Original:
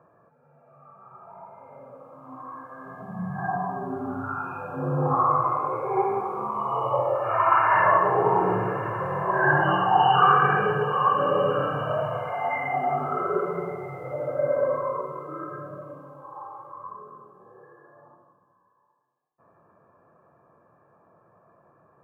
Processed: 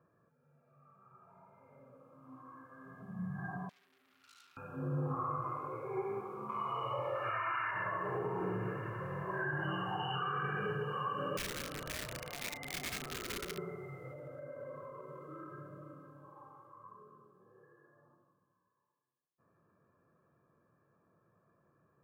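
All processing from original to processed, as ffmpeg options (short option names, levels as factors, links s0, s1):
-filter_complex "[0:a]asettb=1/sr,asplit=3[s0][s1][s2];[s0]atrim=end=3.694[s3];[s1]atrim=start=3.69:end=4.57,asetpts=PTS-STARTPTS,afade=t=in:d=0.004:c=qsin,afade=t=out:st=0.876:d=0.004:c=qsin,aeval=exprs='(tanh(56.2*val(0)+0.55)-tanh(0.55))/56.2':c=same,aderivative[s4];[s2]atrim=start=4.566[s5];[s3][s4]acrossfade=d=0.004:c1=hsin:c2=qsin[s6];[s6][s5]acrossfade=d=0.004:c1=qsin:c2=hsin,asettb=1/sr,asplit=3[s7][s8][s9];[s7]atrim=end=6.494[s10];[s8]atrim=start=6.49:end=7.71,asetpts=PTS-STARTPTS,afade=t=in:d=0.004:c=qsin,afade=t=out:st=1.216:d=0.004:c=qsin,equalizer=f=2100:w=0.75:g=12,asplit=2[s11][s12];[s12]adelay=26,volume=0.266[s13];[s11][s13]amix=inputs=2:normalize=0,atrim=end_sample=53802[s14];[s9]atrim=start=7.706[s15];[s10][s14]acrossfade=d=0.004:c1=hsin:c2=qsin[s16];[s16][s15]acrossfade=d=0.004:c1=qsin:c2=hsin,asettb=1/sr,asplit=3[s17][s18][s19];[s17]atrim=end=11.374[s20];[s18]atrim=start=11.37:end=13.58,asetpts=PTS-STARTPTS,afade=t=in:d=0.004:c=qsin,afade=t=out:st=2.206:d=0.004:c=qsin,acrossover=split=230|810[s21][s22][s23];[s21]acompressor=threshold=0.00708:ratio=4[s24];[s22]acompressor=threshold=0.0398:ratio=4[s25];[s23]acompressor=threshold=0.0126:ratio=4[s26];[s24][s25][s26]amix=inputs=3:normalize=0,aeval=exprs='(mod(16.8*val(0)+1,2)-1)/16.8':c=same,asplit=2[s27][s28];[s28]adelay=34,volume=0.237[s29];[s27][s29]amix=inputs=2:normalize=0,atrim=end_sample=97461[s30];[s19]atrim=start=13.576[s31];[s20][s30]acrossfade=d=0.004:c1=hsin:c2=qsin[s32];[s32][s31]acrossfade=d=0.004:c1=qsin:c2=hsin,asettb=1/sr,asplit=3[s33][s34][s35];[s33]atrim=end=14.094[s36];[s34]atrim=start=14.09:end=16.68,asetpts=PTS-STARTPTS,afade=t=in:d=0.004:c=qsin,afade=t=out:st=2.586:d=0.004:c=qsin,acompressor=threshold=0.0251:ratio=2.5:attack=3.2:release=140:knee=1:detection=peak,aecho=1:1:504:0.299,atrim=end_sample=114219[s37];[s35]atrim=start=16.676[s38];[s36][s37]acrossfade=d=0.004:c1=hsin:c2=qsin[s39];[s39][s38]acrossfade=d=0.004:c1=qsin:c2=hsin,equalizer=f=780:t=o:w=1.2:g=-13,alimiter=limit=0.0944:level=0:latency=1:release=83,volume=0.422"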